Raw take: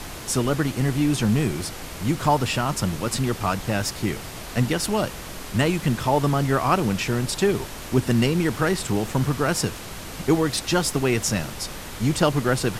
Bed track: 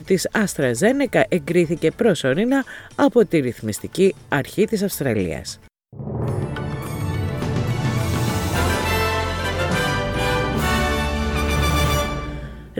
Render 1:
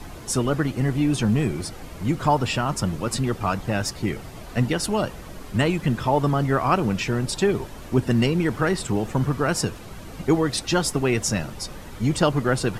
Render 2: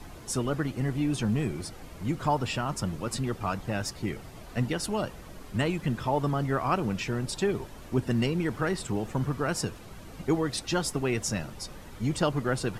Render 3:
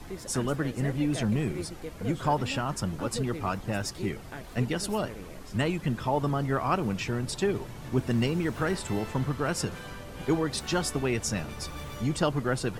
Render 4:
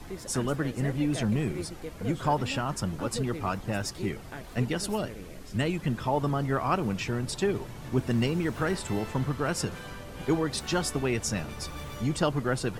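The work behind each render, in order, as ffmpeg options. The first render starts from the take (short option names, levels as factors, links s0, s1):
-af "afftdn=nr=10:nf=-36"
-af "volume=0.473"
-filter_complex "[1:a]volume=0.0794[s0];[0:a][s0]amix=inputs=2:normalize=0"
-filter_complex "[0:a]asettb=1/sr,asplit=3[s0][s1][s2];[s0]atrim=end=4.964[s3];[s1]atrim=start=4.96:end=5.74,asetpts=PTS-STARTPTS,afade=t=in:d=0.004:c=qsin,afade=t=out:st=0.776:d=0.004:c=qsin,equalizer=f=1000:w=1.4:g=-5.5[s4];[s2]atrim=start=5.736[s5];[s3][s4]acrossfade=d=0.004:c1=hsin:c2=qsin[s6];[s6][s5]acrossfade=d=0.004:c1=qsin:c2=hsin"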